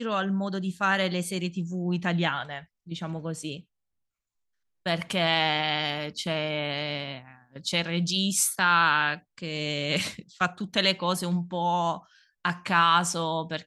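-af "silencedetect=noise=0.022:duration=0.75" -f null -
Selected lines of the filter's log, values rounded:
silence_start: 3.57
silence_end: 4.86 | silence_duration: 1.29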